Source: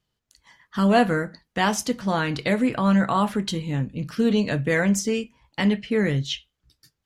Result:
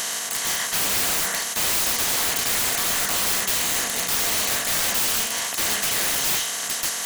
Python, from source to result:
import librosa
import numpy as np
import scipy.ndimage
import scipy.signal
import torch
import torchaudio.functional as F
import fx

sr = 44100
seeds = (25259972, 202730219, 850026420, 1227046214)

y = fx.bin_compress(x, sr, power=0.2)
y = np.diff(y, prepend=0.0)
y = (np.mod(10.0 ** (23.5 / 20.0) * y + 1.0, 2.0) - 1.0) / 10.0 ** (23.5 / 20.0)
y = y * 10.0 ** (7.0 / 20.0)